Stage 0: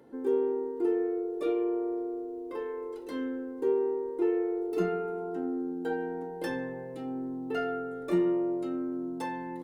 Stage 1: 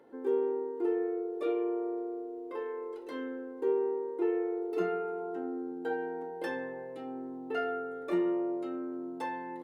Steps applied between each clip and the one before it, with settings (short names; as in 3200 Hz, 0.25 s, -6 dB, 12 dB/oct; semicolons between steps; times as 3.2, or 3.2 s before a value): tone controls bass -13 dB, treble -8 dB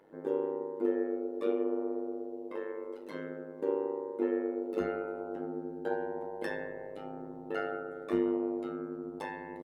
comb 6.2 ms, depth 39%; AM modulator 100 Hz, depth 85%; gain +2 dB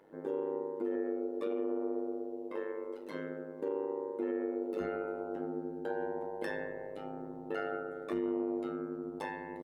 limiter -25.5 dBFS, peak gain reduction 7.5 dB